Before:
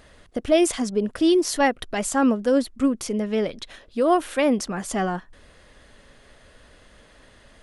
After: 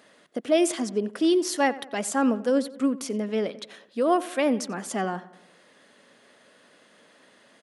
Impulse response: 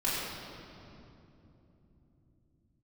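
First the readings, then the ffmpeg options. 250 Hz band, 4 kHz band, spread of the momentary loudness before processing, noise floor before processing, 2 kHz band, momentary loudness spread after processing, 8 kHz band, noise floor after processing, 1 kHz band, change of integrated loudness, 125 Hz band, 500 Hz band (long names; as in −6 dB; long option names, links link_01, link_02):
−3.0 dB, −3.0 dB, 10 LU, −54 dBFS, −3.0 dB, 10 LU, −3.0 dB, −58 dBFS, −3.0 dB, −3.0 dB, −5.0 dB, −3.0 dB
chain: -filter_complex "[0:a]highpass=frequency=180:width=0.5412,highpass=frequency=180:width=1.3066,asplit=2[link_01][link_02];[link_02]adelay=90,lowpass=frequency=3200:poles=1,volume=-17dB,asplit=2[link_03][link_04];[link_04]adelay=90,lowpass=frequency=3200:poles=1,volume=0.52,asplit=2[link_05][link_06];[link_06]adelay=90,lowpass=frequency=3200:poles=1,volume=0.52,asplit=2[link_07][link_08];[link_08]adelay=90,lowpass=frequency=3200:poles=1,volume=0.52,asplit=2[link_09][link_10];[link_10]adelay=90,lowpass=frequency=3200:poles=1,volume=0.52[link_11];[link_03][link_05][link_07][link_09][link_11]amix=inputs=5:normalize=0[link_12];[link_01][link_12]amix=inputs=2:normalize=0,volume=-3dB"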